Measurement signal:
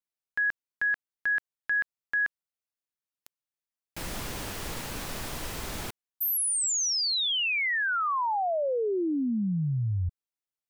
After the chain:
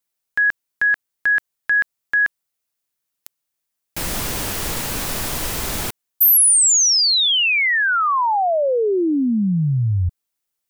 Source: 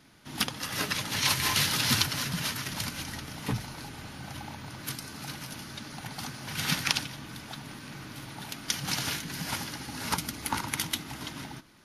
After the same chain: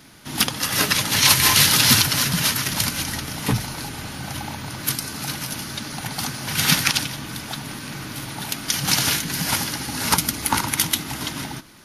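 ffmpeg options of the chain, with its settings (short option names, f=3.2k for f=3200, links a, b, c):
-af "highshelf=f=6.8k:g=7,alimiter=level_in=10.5dB:limit=-1dB:release=50:level=0:latency=1,volume=-1dB"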